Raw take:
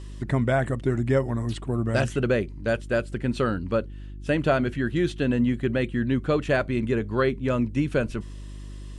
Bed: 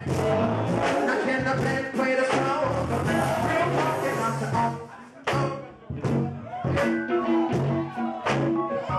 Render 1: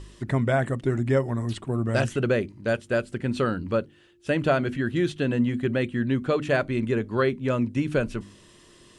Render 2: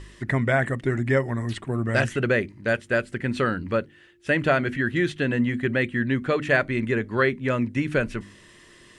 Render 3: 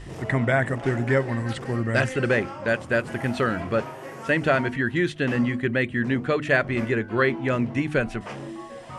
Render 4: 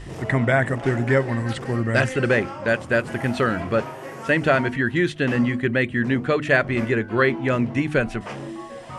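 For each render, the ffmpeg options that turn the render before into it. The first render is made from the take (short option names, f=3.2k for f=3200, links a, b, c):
-af "bandreject=f=50:t=h:w=4,bandreject=f=100:t=h:w=4,bandreject=f=150:t=h:w=4,bandreject=f=200:t=h:w=4,bandreject=f=250:t=h:w=4,bandreject=f=300:t=h:w=4"
-af "equalizer=f=1.9k:w=2.1:g=10"
-filter_complex "[1:a]volume=-12dB[a];[0:a][a]amix=inputs=2:normalize=0"
-af "volume=2.5dB"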